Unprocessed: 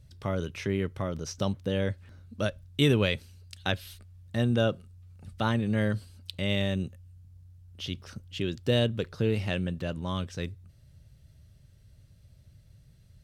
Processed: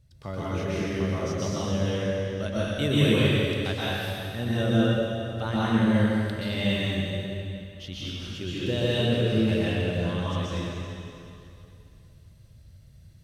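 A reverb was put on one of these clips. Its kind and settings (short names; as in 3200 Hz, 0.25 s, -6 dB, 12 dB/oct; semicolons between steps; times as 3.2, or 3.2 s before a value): plate-style reverb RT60 2.7 s, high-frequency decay 0.95×, pre-delay 0.11 s, DRR -9 dB; gain -5.5 dB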